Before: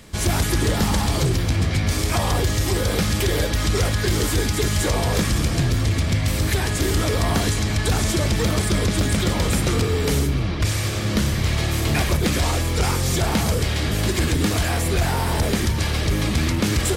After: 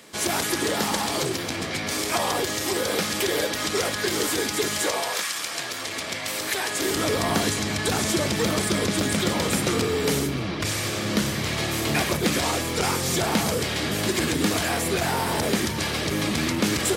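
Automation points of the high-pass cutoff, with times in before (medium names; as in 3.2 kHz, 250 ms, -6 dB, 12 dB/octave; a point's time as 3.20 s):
4.74 s 300 Hz
5.27 s 1.1 kHz
6.02 s 490 Hz
6.68 s 490 Hz
7.08 s 180 Hz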